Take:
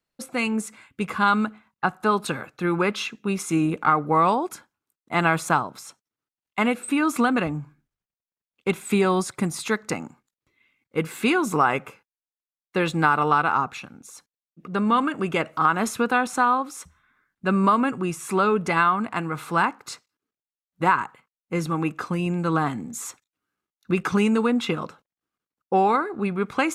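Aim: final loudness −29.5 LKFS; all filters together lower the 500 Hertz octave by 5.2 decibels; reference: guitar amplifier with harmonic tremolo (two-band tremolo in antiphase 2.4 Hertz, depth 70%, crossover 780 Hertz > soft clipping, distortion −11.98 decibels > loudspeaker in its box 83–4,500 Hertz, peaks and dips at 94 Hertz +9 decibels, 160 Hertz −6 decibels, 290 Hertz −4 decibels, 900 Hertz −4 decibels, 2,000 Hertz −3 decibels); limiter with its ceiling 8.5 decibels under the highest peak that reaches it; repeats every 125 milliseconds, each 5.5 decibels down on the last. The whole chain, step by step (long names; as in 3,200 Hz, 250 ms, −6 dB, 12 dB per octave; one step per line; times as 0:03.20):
parametric band 500 Hz −6 dB
brickwall limiter −15.5 dBFS
repeating echo 125 ms, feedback 53%, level −5.5 dB
two-band tremolo in antiphase 2.4 Hz, depth 70%, crossover 780 Hz
soft clipping −24.5 dBFS
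loudspeaker in its box 83–4,500 Hz, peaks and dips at 94 Hz +9 dB, 160 Hz −6 dB, 290 Hz −4 dB, 900 Hz −4 dB, 2,000 Hz −3 dB
level +4.5 dB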